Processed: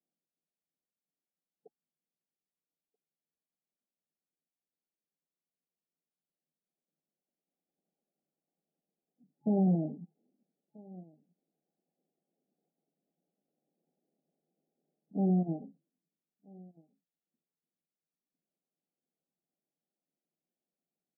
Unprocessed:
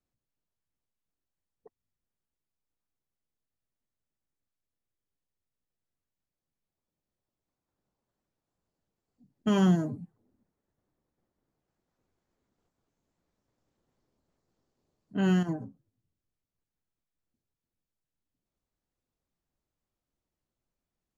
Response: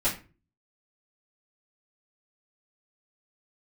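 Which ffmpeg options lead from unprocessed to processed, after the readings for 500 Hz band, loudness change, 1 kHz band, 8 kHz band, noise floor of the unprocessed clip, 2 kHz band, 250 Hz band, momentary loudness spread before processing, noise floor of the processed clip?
-3.0 dB, -3.5 dB, -5.5 dB, no reading, under -85 dBFS, under -40 dB, -3.0 dB, 14 LU, under -85 dBFS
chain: -filter_complex "[0:a]aeval=exprs='0.2*(cos(1*acos(clip(val(0)/0.2,-1,1)))-cos(1*PI/2))+0.0355*(cos(3*acos(clip(val(0)/0.2,-1,1)))-cos(3*PI/2))+0.00447*(cos(8*acos(clip(val(0)/0.2,-1,1)))-cos(8*PI/2))':c=same,asplit=2[s0][s1];[s1]acrusher=bits=4:mix=0:aa=0.000001,volume=0.422[s2];[s0][s2]amix=inputs=2:normalize=0,asplit=2[s3][s4];[s4]adelay=1283,volume=0.0355,highshelf=f=4000:g=-28.9[s5];[s3][s5]amix=inputs=2:normalize=0,asoftclip=type=tanh:threshold=0.0531,afftfilt=real='re*between(b*sr/4096,140,850)':imag='im*between(b*sr/4096,140,850)':win_size=4096:overlap=0.75,volume=1.41"

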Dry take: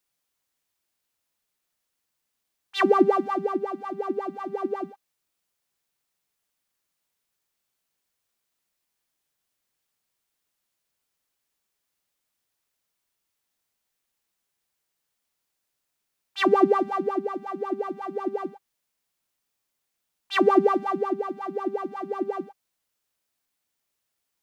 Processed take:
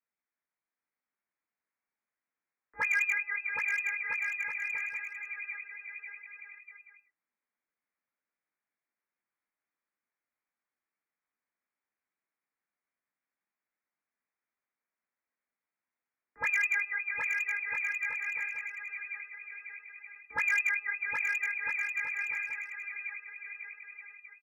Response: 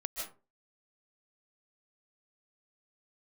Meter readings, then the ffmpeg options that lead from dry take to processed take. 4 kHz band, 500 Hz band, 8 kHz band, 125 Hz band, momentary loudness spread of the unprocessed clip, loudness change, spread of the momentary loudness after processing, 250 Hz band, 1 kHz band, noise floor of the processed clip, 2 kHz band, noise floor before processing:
under -15 dB, -33.5 dB, no reading, under -20 dB, 14 LU, -6.0 dB, 18 LU, under -35 dB, -18.5 dB, under -85 dBFS, +9.0 dB, -81 dBFS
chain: -filter_complex "[0:a]asplit=2[s0][s1];[s1]asoftclip=type=tanh:threshold=0.0891,volume=0.447[s2];[s0][s2]amix=inputs=2:normalize=0,flanger=delay=16.5:depth=5.1:speed=0.75,acrossover=split=370 2000:gain=0.178 1 0.0794[s3][s4][s5];[s3][s4][s5]amix=inputs=3:normalize=0,lowpass=f=2400:t=q:w=0.5098,lowpass=f=2400:t=q:w=0.6013,lowpass=f=2400:t=q:w=0.9,lowpass=f=2400:t=q:w=2.563,afreqshift=-2800,equalizer=f=230:t=o:w=1.4:g=12.5,asoftclip=type=hard:threshold=0.141,asplit=2[s6][s7];[s7]aecho=0:1:770|1309|1686|1950|2135:0.631|0.398|0.251|0.158|0.1[s8];[s6][s8]amix=inputs=2:normalize=0,volume=0.531"

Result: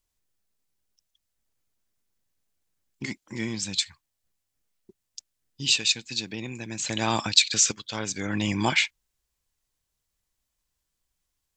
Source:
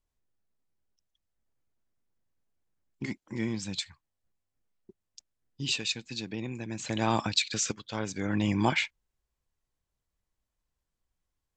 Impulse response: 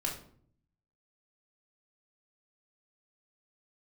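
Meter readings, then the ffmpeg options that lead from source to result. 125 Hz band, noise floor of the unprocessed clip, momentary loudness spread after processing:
0.0 dB, -85 dBFS, 15 LU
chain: -af "highshelf=f=2200:g=11"

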